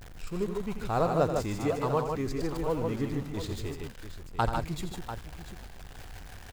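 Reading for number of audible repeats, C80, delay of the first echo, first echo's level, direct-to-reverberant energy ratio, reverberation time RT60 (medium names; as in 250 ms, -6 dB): 3, no reverb, 85 ms, -10.0 dB, no reverb, no reverb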